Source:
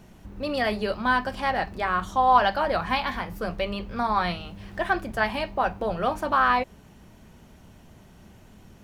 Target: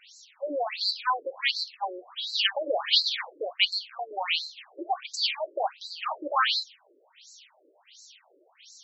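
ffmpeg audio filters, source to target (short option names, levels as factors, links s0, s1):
-filter_complex "[0:a]aexciter=amount=6:drive=6:freq=2300,asettb=1/sr,asplit=3[s0][s1][s2];[s0]atrim=end=3.504[s3];[s1]atrim=start=3.5:end=4.11,asetpts=PTS-STARTPTS,afade=t=in:d=0.004:c=qsin,afade=t=out:st=0.606:d=0.004:c=qsin,equalizer=f=340:t=o:w=0.9:g=-11.5[s4];[s2]atrim=start=4.106[s5];[s3][s4]acrossfade=d=0.004:c1=hsin:c2=qsin[s6];[s6][s5]acrossfade=d=0.004:c1=qsin:c2=hsin,afftfilt=real='re*between(b*sr/1024,410*pow(5600/410,0.5+0.5*sin(2*PI*1.4*pts/sr))/1.41,410*pow(5600/410,0.5+0.5*sin(2*PI*1.4*pts/sr))*1.41)':imag='im*between(b*sr/1024,410*pow(5600/410,0.5+0.5*sin(2*PI*1.4*pts/sr))/1.41,410*pow(5600/410,0.5+0.5*sin(2*PI*1.4*pts/sr))*1.41)':win_size=1024:overlap=0.75"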